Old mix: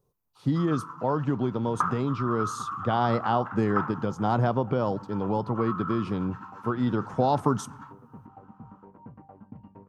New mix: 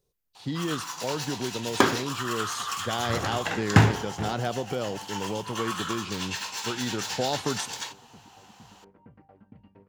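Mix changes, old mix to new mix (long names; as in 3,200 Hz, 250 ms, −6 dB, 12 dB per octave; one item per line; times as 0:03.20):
first sound: remove resonant band-pass 1,300 Hz, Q 9.2
master: add octave-band graphic EQ 125/250/1,000/2,000/4,000/8,000 Hz −7/−5/−11/+5/+8/+3 dB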